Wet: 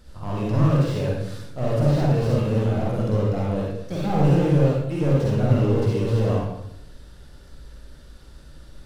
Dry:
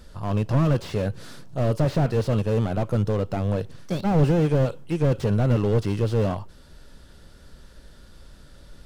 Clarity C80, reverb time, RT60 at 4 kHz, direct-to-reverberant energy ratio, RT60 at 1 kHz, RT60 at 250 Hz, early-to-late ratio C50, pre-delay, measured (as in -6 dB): 2.5 dB, 0.80 s, 0.70 s, -4.5 dB, 0.75 s, 0.90 s, -1.5 dB, 39 ms